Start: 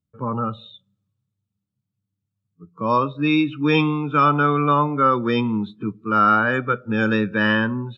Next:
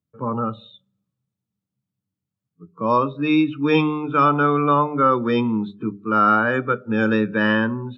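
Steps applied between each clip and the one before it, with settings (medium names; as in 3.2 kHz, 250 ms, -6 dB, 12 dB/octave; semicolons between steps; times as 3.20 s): high-pass 170 Hz 6 dB/octave; tilt shelf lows +3.5 dB, about 1.2 kHz; hum notches 50/100/150/200/250/300/350/400 Hz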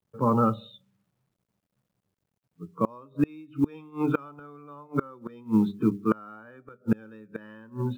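treble shelf 2.6 kHz -9 dB; companded quantiser 8-bit; inverted gate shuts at -14 dBFS, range -30 dB; trim +2.5 dB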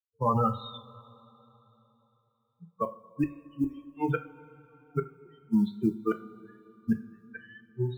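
expander on every frequency bin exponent 3; peak limiter -24.5 dBFS, peak gain reduction 8.5 dB; two-slope reverb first 0.33 s, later 3.6 s, from -20 dB, DRR 6 dB; trim +7 dB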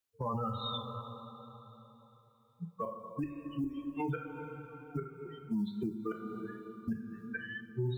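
compression 6:1, threshold -35 dBFS, peak gain reduction 14 dB; peak limiter -35.5 dBFS, peak gain reduction 10.5 dB; trim +8 dB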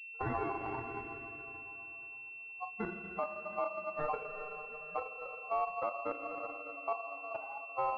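level-controlled noise filter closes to 810 Hz, open at -33 dBFS; ring modulator 910 Hz; class-D stage that switches slowly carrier 2.7 kHz; trim +4 dB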